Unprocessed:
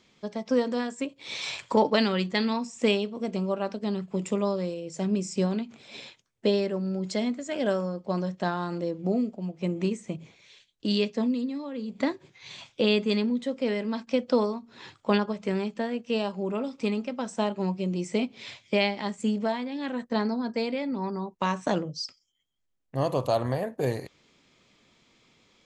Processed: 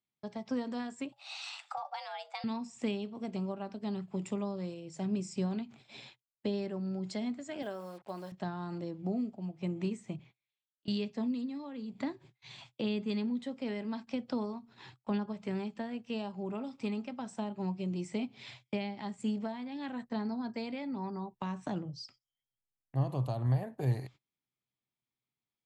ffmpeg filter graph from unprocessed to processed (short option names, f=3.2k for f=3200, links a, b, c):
-filter_complex "[0:a]asettb=1/sr,asplit=3[a][b][c];[a]atrim=end=1.124[d];[b]atrim=start=1.12:end=2.44,asetpts=PTS-STARTPTS,afade=t=in:d=0.004:c=qsin,afade=t=out:st=1.316:d=0.004:c=qsin,highpass=f=310:w=0.5412,highpass=f=310:w=1.3066,afreqshift=290,asoftclip=type=hard:threshold=-12dB[e];[c]atrim=start=2.436[f];[d][e]acrossfade=d=0.004:c1=hsin:c2=qsin[g];[g][f]acrossfade=d=0.004:c1=qsin:c2=hsin,asettb=1/sr,asplit=3[h][i][j];[h]atrim=end=7.624[k];[i]atrim=start=7.62:end=8.32,asetpts=PTS-STARTPTS,afade=t=in:d=0.004:c=qsin,afade=t=out:st=0.696:d=0.004:c=qsin,acrusher=bits=7:mix=0:aa=0.5,bass=f=250:g=-15,treble=f=4k:g=-1[l];[j]atrim=start=8.316[m];[k][l]acrossfade=d=0.004:c1=hsin:c2=qsin[n];[n][m]acrossfade=d=0.004:c1=qsin:c2=hsin,asettb=1/sr,asplit=3[o][p][q];[o]atrim=end=10.194[r];[p]atrim=start=10.19:end=10.88,asetpts=PTS-STARTPTS,afade=t=in:d=0.004:c=qsin,afade=t=out:st=0.686:d=0.004:c=qsin,lowpass=3.5k,tiltshelf=f=670:g=-7,acrossover=split=200|410[s][t][u];[s]acompressor=threshold=-57dB:ratio=4[v];[t]acompressor=threshold=-59dB:ratio=4[w];[u]acompressor=threshold=-59dB:ratio=4[x];[v][w][x]amix=inputs=3:normalize=0[y];[q]atrim=start=10.876[z];[r][y]acrossfade=d=0.004:c1=hsin:c2=qsin[aa];[aa][z]acrossfade=d=0.004:c1=qsin:c2=hsin,asettb=1/sr,asplit=3[ab][ac][ad];[ab]atrim=end=21.934[ae];[ac]atrim=start=21.93:end=23.09,asetpts=PTS-STARTPTS,afade=t=in:d=0.004:c=qsin,afade=t=out:st=1.156:d=0.004:c=qsin,highshelf=f=4.2k:g=-6,acompressor=mode=upward:threshold=-44dB:ratio=2.5:attack=3.2:release=140:knee=2.83:detection=peak[af];[ad]atrim=start=23.086[ag];[ae][af]acrossfade=d=0.004:c1=hsin:c2=qsin[ah];[ah][ag]acrossfade=d=0.004:c1=qsin:c2=hsin,agate=range=-27dB:threshold=-49dB:ratio=16:detection=peak,equalizer=f=125:t=o:w=0.33:g=12,equalizer=f=500:t=o:w=0.33:g=-7,equalizer=f=800:t=o:w=0.33:g=5,equalizer=f=6.3k:t=o:w=0.33:g=-5,acrossover=split=360[ai][aj];[aj]acompressor=threshold=-32dB:ratio=6[ak];[ai][ak]amix=inputs=2:normalize=0,volume=-7dB"